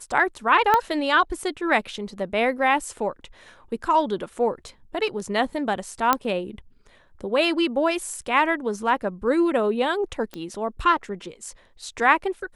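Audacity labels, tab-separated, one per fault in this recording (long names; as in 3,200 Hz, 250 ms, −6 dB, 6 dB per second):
0.740000	0.740000	click −6 dBFS
6.130000	6.130000	click −4 dBFS
10.340000	10.340000	click −19 dBFS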